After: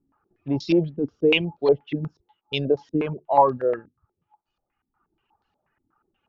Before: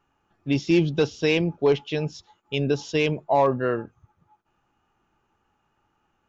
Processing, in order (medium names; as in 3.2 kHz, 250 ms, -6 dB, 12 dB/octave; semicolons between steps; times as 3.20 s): reverb removal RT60 1.5 s; step-sequenced low-pass 8.3 Hz 270–4300 Hz; trim -2 dB